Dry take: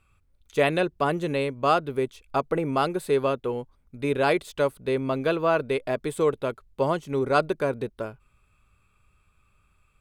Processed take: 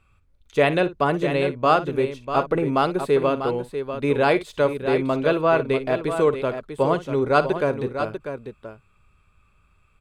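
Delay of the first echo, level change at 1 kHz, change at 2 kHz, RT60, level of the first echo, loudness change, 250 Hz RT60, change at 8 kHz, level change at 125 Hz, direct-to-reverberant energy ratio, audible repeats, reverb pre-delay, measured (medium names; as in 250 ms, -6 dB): 56 ms, +4.0 dB, +3.5 dB, no reverb, -15.0 dB, +4.0 dB, no reverb, no reading, +4.0 dB, no reverb, 2, no reverb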